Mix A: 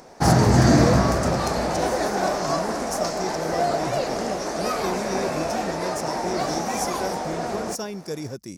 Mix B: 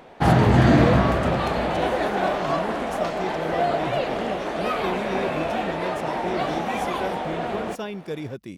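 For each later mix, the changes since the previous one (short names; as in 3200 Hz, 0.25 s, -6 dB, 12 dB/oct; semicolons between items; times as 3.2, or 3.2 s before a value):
master: add resonant high shelf 4200 Hz -9.5 dB, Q 3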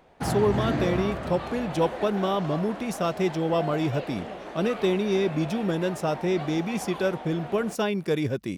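speech +6.0 dB; background -11.0 dB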